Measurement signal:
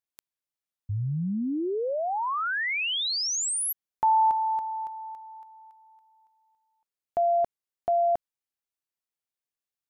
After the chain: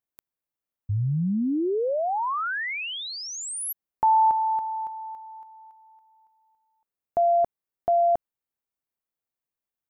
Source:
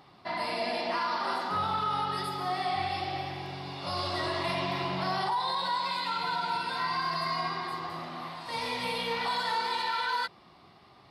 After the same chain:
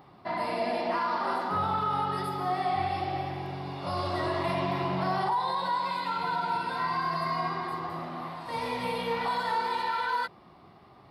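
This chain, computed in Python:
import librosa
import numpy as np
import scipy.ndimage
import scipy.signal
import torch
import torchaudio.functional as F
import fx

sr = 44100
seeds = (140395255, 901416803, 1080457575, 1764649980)

y = fx.peak_eq(x, sr, hz=5200.0, db=-11.0, octaves=2.7)
y = y * librosa.db_to_amplitude(4.0)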